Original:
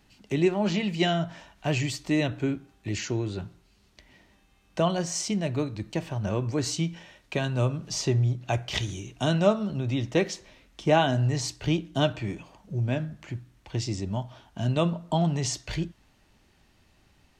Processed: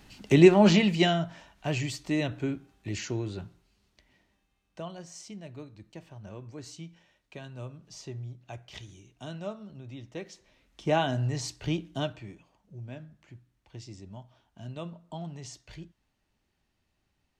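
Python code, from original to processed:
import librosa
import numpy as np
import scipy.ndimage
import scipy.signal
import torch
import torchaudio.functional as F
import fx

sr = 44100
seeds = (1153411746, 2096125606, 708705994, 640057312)

y = fx.gain(x, sr, db=fx.line((0.69, 7.0), (1.3, -3.5), (3.29, -3.5), (4.91, -15.5), (10.24, -15.5), (10.89, -4.5), (11.87, -4.5), (12.39, -14.5)))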